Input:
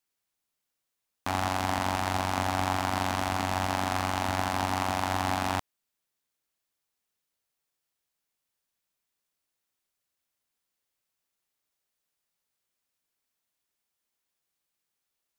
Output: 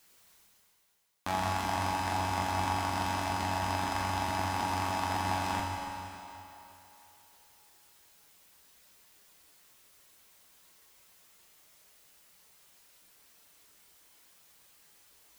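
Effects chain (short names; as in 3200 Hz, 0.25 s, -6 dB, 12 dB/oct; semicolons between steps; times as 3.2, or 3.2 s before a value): reverb removal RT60 1.3 s; reverse; upward compressor, threshold -40 dBFS; reverse; reverb RT60 3.3 s, pre-delay 8 ms, DRR -2.5 dB; gain -4.5 dB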